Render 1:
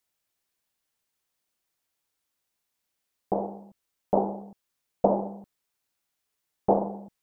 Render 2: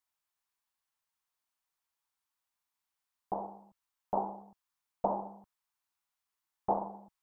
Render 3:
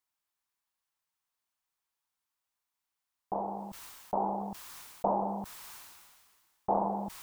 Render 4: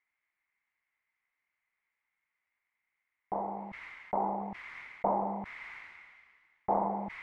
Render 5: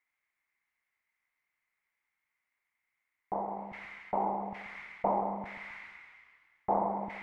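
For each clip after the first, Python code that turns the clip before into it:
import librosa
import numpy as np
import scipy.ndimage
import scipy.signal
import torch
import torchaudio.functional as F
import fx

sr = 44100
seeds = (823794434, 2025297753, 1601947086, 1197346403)

y1 = fx.graphic_eq(x, sr, hz=(125, 250, 500, 1000), db=(-4, -4, -7, 9))
y1 = y1 * 10.0 ** (-8.0 / 20.0)
y2 = fx.sustainer(y1, sr, db_per_s=32.0)
y3 = fx.lowpass_res(y2, sr, hz=2100.0, q=12.0)
y3 = y3 * 10.0 ** (-1.5 / 20.0)
y4 = fx.echo_feedback(y3, sr, ms=133, feedback_pct=39, wet_db=-11.0)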